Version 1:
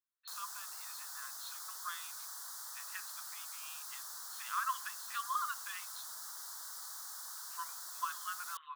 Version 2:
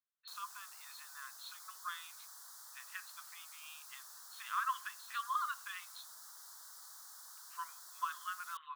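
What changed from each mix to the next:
background -7.5 dB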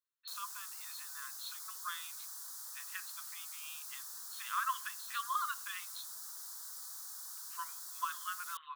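master: add treble shelf 4.1 kHz +8.5 dB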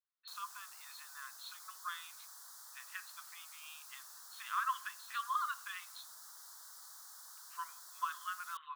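speech: send +6.0 dB; master: add treble shelf 4.1 kHz -8.5 dB

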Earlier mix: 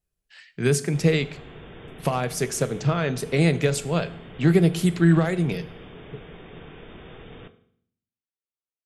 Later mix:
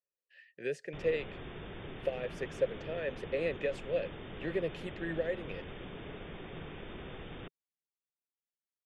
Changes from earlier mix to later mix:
speech: add vowel filter e; reverb: off

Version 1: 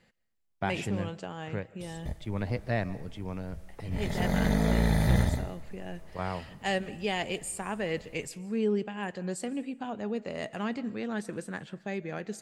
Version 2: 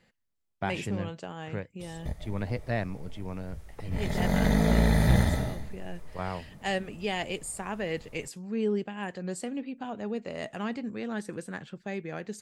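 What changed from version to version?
speech: send off; background: send +11.0 dB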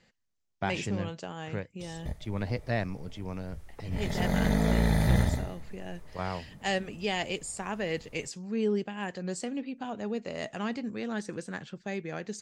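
speech: add resonant low-pass 6.3 kHz, resonance Q 2; background: send -10.0 dB

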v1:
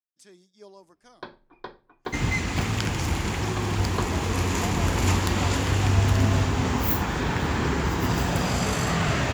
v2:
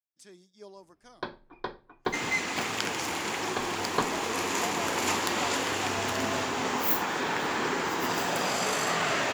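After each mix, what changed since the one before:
first sound +3.5 dB; second sound: add high-pass 370 Hz 12 dB/octave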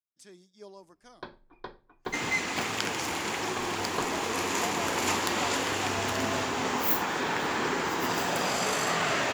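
first sound -6.5 dB; master: add bass shelf 70 Hz +6.5 dB

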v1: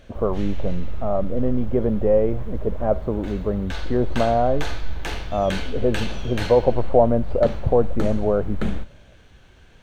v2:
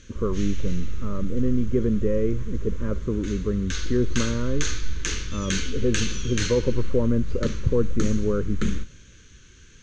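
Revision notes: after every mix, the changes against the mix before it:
background: add resonant low-pass 6.5 kHz, resonance Q 7; master: add Butterworth band-stop 720 Hz, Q 0.94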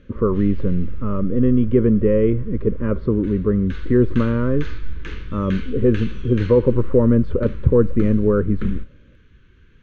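speech +7.5 dB; background: add distance through air 480 m

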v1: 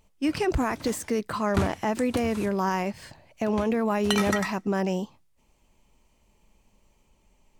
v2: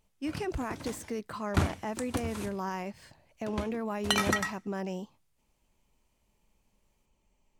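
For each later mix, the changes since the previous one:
speech -9.0 dB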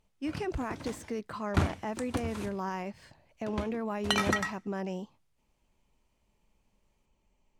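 master: add treble shelf 7.8 kHz -9 dB

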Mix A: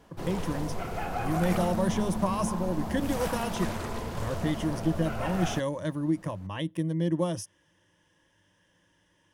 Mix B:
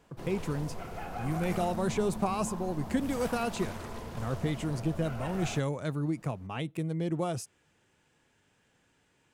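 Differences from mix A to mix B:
speech: remove rippled EQ curve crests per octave 1.2, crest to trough 12 dB; background -6.5 dB

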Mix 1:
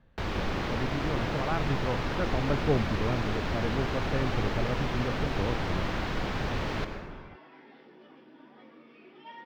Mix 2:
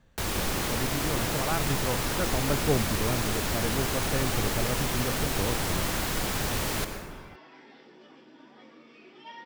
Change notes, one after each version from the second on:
master: remove distance through air 240 m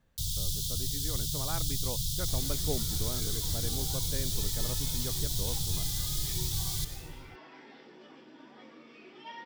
speech -8.5 dB; first sound: add Chebyshev band-stop 160–3400 Hz, order 5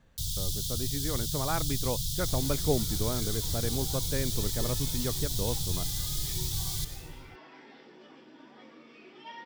speech +7.5 dB

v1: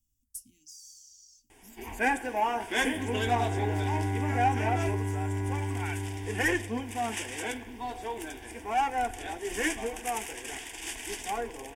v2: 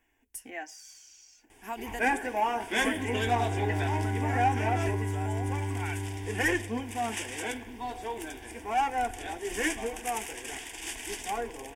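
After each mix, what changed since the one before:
speech: remove inverse Chebyshev band-stop 500–1800 Hz, stop band 60 dB; reverb: off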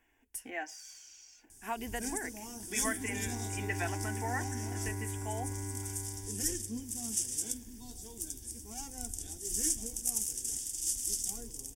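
first sound: add FFT filter 180 Hz 0 dB, 740 Hz -25 dB, 2.4 kHz -25 dB, 5.7 kHz +8 dB; second sound -8.0 dB; master: add peaking EQ 1.4 kHz +2.5 dB 0.43 oct

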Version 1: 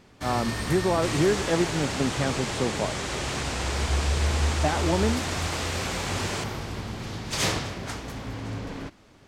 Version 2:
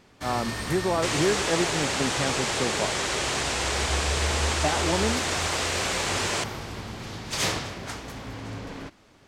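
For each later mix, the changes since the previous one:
second sound +6.0 dB; master: add bass shelf 330 Hz -4 dB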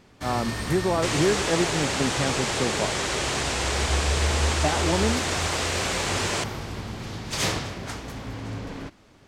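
master: add bass shelf 330 Hz +4 dB

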